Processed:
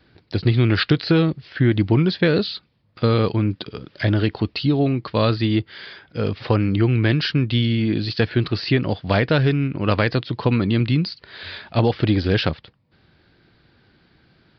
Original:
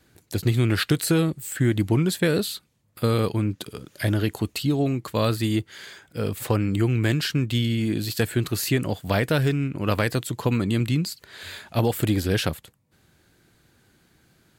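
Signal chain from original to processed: resampled via 11.025 kHz; trim +4 dB

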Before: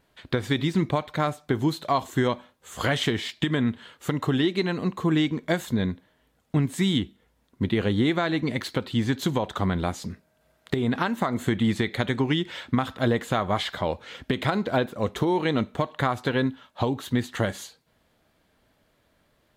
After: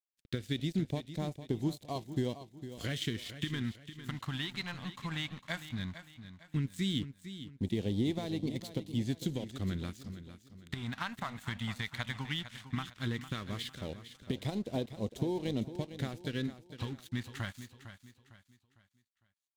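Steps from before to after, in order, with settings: crossover distortion -38.5 dBFS; phase shifter stages 2, 0.15 Hz, lowest notch 360–1400 Hz; feedback delay 454 ms, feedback 37%, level -12 dB; trim -7.5 dB

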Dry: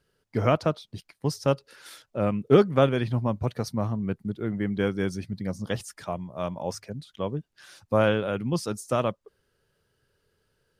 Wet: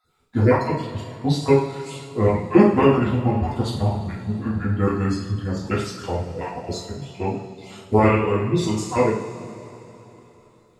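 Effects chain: random holes in the spectrogram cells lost 25%; formant shift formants -4 st; two-slope reverb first 0.55 s, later 3.6 s, from -17 dB, DRR -6.5 dB; trim +1 dB

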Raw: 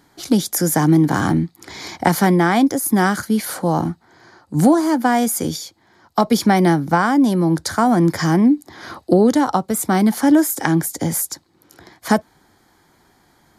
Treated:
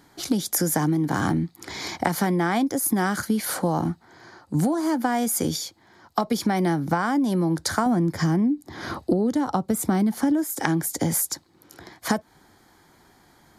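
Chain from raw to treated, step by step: 7.86–10.44 s: bass shelf 370 Hz +8.5 dB; compression 10:1, threshold -19 dBFS, peak gain reduction 15.5 dB

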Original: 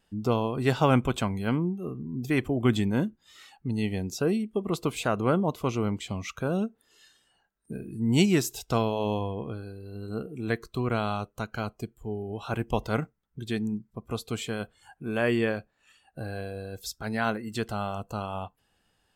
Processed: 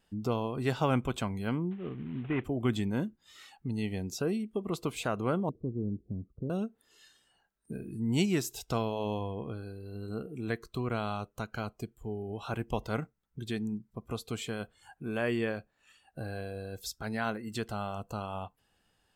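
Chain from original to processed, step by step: 1.71–2.44 s: CVSD coder 16 kbps; 5.49–6.50 s: inverse Chebyshev low-pass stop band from 2.3 kHz, stop band 80 dB; in parallel at -0.5 dB: compression, threshold -34 dBFS, peak gain reduction 17 dB; on the sum: trim -7.5 dB

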